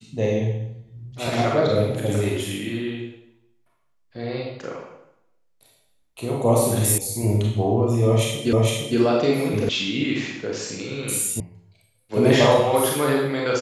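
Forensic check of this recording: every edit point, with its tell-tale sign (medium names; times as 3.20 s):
6.98 s: sound stops dead
8.53 s: repeat of the last 0.46 s
9.69 s: sound stops dead
11.40 s: sound stops dead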